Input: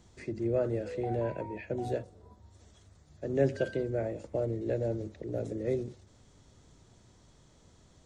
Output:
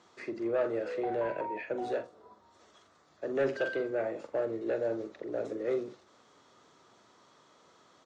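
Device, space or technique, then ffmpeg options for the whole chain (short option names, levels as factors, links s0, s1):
intercom: -filter_complex "[0:a]highpass=360,lowpass=5000,equalizer=f=1200:t=o:w=0.55:g=9,asoftclip=type=tanh:threshold=0.0531,asplit=2[s0][s1];[s1]adelay=44,volume=0.299[s2];[s0][s2]amix=inputs=2:normalize=0,volume=1.41"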